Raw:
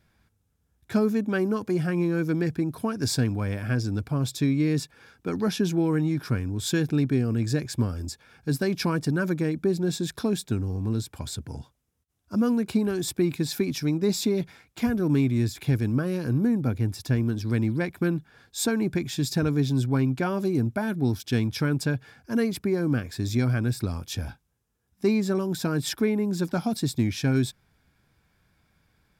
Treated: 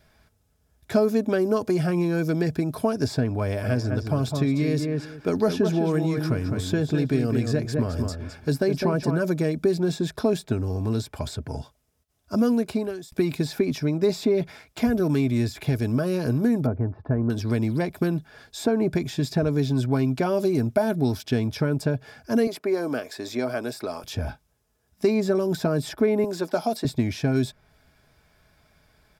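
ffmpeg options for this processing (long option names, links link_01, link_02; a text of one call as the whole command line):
ffmpeg -i in.wav -filter_complex "[0:a]asplit=3[link_01][link_02][link_03];[link_01]afade=type=out:start_time=3.63:duration=0.02[link_04];[link_02]asplit=2[link_05][link_06];[link_06]adelay=206,lowpass=frequency=2000:poles=1,volume=-6dB,asplit=2[link_07][link_08];[link_08]adelay=206,lowpass=frequency=2000:poles=1,volume=0.18,asplit=2[link_09][link_10];[link_10]adelay=206,lowpass=frequency=2000:poles=1,volume=0.18[link_11];[link_05][link_07][link_09][link_11]amix=inputs=4:normalize=0,afade=type=in:start_time=3.63:duration=0.02,afade=type=out:start_time=9.18:duration=0.02[link_12];[link_03]afade=type=in:start_time=9.18:duration=0.02[link_13];[link_04][link_12][link_13]amix=inputs=3:normalize=0,asettb=1/sr,asplit=3[link_14][link_15][link_16];[link_14]atrim=end=16.664[link_17];[link_15]atrim=start=16.66:end=17.3,asetpts=PTS-STARTPTS,afade=type=in:duration=0.004:curve=qsin,afade=type=out:start_time=0.636:duration=0.004:curve=qsin,lowpass=frequency=1300:width=0.5412,lowpass=frequency=1300:width=1.3066[link_18];[link_16]atrim=start=17.296[link_19];[link_17][link_18]acrossfade=duration=0.004:curve1=hsin:curve2=qsin[link_20];[link_20][link_19]acrossfade=duration=0.004:curve1=qsin:curve2=hsin,asettb=1/sr,asplit=3[link_21][link_22][link_23];[link_21]atrim=end=22.474[link_24];[link_22]atrim=start=22.47:end=24.04,asetpts=PTS-STARTPTS,afade=type=in:duration=0.004:curve=qsin,afade=type=out:start_time=1.566:duration=0.004:curve=qsin,highpass=400[link_25];[link_23]atrim=start=24.036[link_26];[link_24][link_25]acrossfade=duration=0.004:curve1=hsin:curve2=qsin[link_27];[link_27][link_26]acrossfade=duration=0.004:curve1=qsin:curve2=hsin,asettb=1/sr,asplit=3[link_28][link_29][link_30];[link_28]atrim=end=26.244[link_31];[link_29]atrim=start=26.24:end=26.85,asetpts=PTS-STARTPTS,afade=type=in:duration=0.004:curve=qsin,afade=type=out:start_time=0.606:duration=0.004:curve=qsin,highpass=340[link_32];[link_30]atrim=start=26.846[link_33];[link_31][link_32]acrossfade=duration=0.004:curve1=hsin:curve2=qsin[link_34];[link_34][link_33]acrossfade=duration=0.004:curve1=qsin:curve2=hsin,asplit=2[link_35][link_36];[link_35]atrim=end=13.12,asetpts=PTS-STARTPTS,afade=type=out:start_time=12.46:duration=0.66[link_37];[link_36]atrim=start=13.12,asetpts=PTS-STARTPTS,afade=type=in:duration=0.004:curve=hsin[link_38];[link_37][link_38]concat=n=2:v=0:a=1,equalizer=frequency=200:width_type=o:width=0.33:gain=-9,equalizer=frequency=630:width_type=o:width=0.33:gain=8,equalizer=frequency=5000:width_type=o:width=0.33:gain=3,acrossover=split=1100|2800[link_39][link_40][link_41];[link_39]acompressor=threshold=-25dB:ratio=4[link_42];[link_40]acompressor=threshold=-49dB:ratio=4[link_43];[link_41]acompressor=threshold=-48dB:ratio=4[link_44];[link_42][link_43][link_44]amix=inputs=3:normalize=0,aecho=1:1:4.7:0.32,volume=6dB" out.wav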